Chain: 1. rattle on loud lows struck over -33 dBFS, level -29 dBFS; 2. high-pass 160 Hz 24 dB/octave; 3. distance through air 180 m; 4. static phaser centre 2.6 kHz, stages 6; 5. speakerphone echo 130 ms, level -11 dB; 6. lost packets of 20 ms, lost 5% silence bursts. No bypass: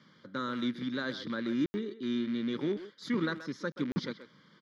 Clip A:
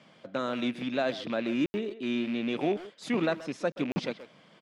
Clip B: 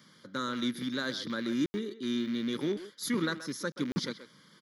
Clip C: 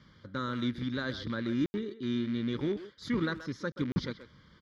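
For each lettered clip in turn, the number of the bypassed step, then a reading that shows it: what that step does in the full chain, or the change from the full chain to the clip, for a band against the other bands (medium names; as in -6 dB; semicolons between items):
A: 4, 500 Hz band +4.0 dB; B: 3, 4 kHz band +4.5 dB; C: 2, 125 Hz band +5.5 dB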